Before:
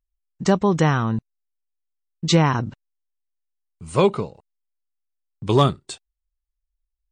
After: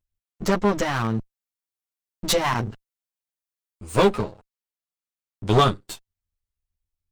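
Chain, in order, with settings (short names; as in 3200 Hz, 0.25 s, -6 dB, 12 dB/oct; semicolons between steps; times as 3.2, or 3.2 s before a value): minimum comb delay 9.6 ms; 0.95–4.23 high shelf 6500 Hz +5 dB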